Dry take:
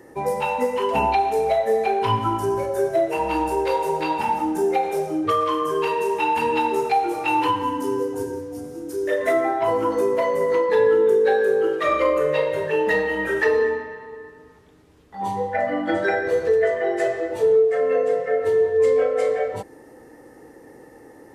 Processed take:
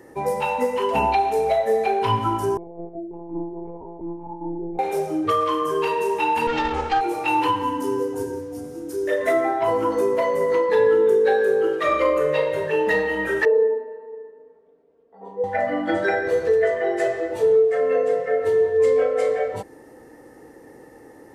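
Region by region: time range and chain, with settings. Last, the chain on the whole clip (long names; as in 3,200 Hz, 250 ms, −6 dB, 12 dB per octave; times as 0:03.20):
0:02.57–0:04.79: formant resonators in series u + parametric band 1,900 Hz −3.5 dB 1.1 octaves + one-pitch LPC vocoder at 8 kHz 170 Hz
0:06.47–0:07.01: lower of the sound and its delayed copy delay 3.6 ms + Bessel low-pass filter 5,000 Hz, order 8
0:13.45–0:15.44: resonant band-pass 520 Hz, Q 3 + comb filter 4.4 ms, depth 79%
whole clip: no processing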